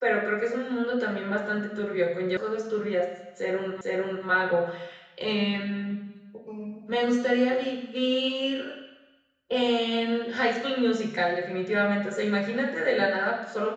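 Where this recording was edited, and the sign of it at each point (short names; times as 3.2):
2.37 sound cut off
3.81 repeat of the last 0.45 s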